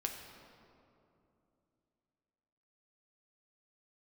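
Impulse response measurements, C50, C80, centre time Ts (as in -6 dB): 5.0 dB, 6.0 dB, 59 ms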